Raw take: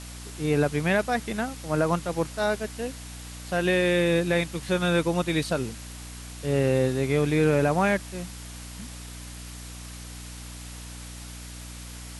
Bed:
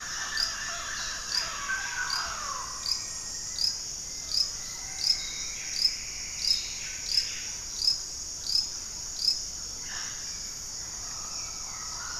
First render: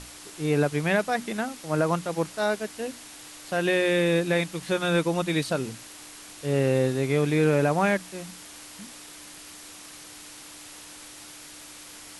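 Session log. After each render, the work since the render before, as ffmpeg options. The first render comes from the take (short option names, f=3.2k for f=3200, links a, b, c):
-af "bandreject=f=60:t=h:w=6,bandreject=f=120:t=h:w=6,bandreject=f=180:t=h:w=6,bandreject=f=240:t=h:w=6"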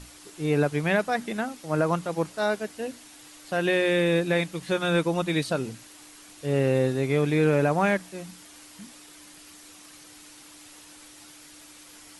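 -af "afftdn=nr=6:nf=-45"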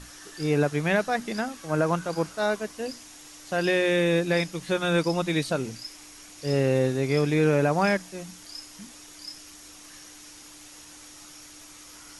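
-filter_complex "[1:a]volume=-15dB[a];[0:a][a]amix=inputs=2:normalize=0"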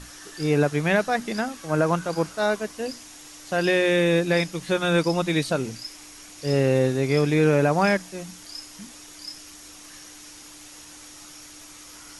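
-af "volume=2.5dB"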